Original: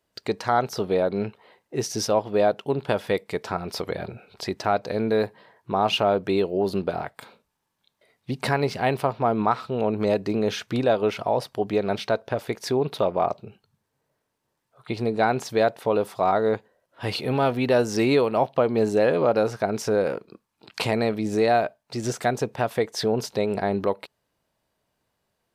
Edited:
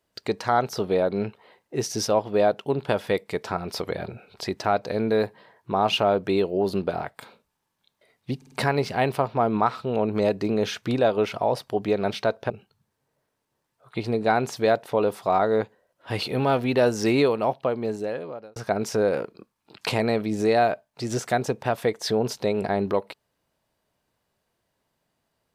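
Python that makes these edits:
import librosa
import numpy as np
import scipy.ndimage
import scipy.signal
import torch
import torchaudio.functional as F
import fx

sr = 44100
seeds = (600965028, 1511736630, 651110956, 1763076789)

y = fx.edit(x, sr, fx.stutter(start_s=8.37, slice_s=0.05, count=4),
    fx.cut(start_s=12.35, length_s=1.08),
    fx.fade_out_span(start_s=18.09, length_s=1.4), tone=tone)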